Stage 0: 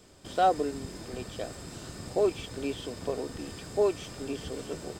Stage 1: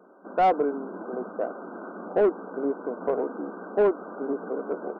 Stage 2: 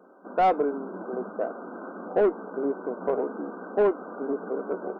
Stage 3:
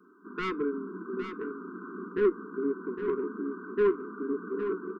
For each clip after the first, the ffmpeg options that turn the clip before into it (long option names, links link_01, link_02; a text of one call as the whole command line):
ffmpeg -i in.wav -filter_complex "[0:a]dynaudnorm=framelen=180:gausssize=5:maxgain=3dB,afftfilt=real='re*between(b*sr/4096,180,1600)':imag='im*between(b*sr/4096,180,1600)':win_size=4096:overlap=0.75,asplit=2[link_01][link_02];[link_02]highpass=frequency=720:poles=1,volume=16dB,asoftclip=type=tanh:threshold=-12dB[link_03];[link_01][link_03]amix=inputs=2:normalize=0,lowpass=frequency=1200:poles=1,volume=-6dB" out.wav
ffmpeg -i in.wav -af "flanger=delay=3.8:depth=1.5:regen=84:speed=0.52:shape=sinusoidal,volume=4.5dB" out.wav
ffmpeg -i in.wav -af "aeval=exprs='0.237*(cos(1*acos(clip(val(0)/0.237,-1,1)))-cos(1*PI/2))+0.0119*(cos(3*acos(clip(val(0)/0.237,-1,1)))-cos(3*PI/2))':channel_layout=same,asuperstop=centerf=660:order=12:qfactor=1.1,aecho=1:1:810:0.355" out.wav